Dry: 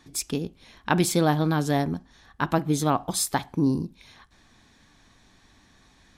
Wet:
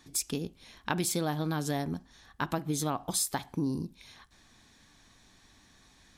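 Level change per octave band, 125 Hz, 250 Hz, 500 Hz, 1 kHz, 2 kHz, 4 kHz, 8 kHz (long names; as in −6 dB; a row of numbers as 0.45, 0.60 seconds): −8.0, −8.5, −8.5, −8.5, −7.0, −4.5, −2.5 decibels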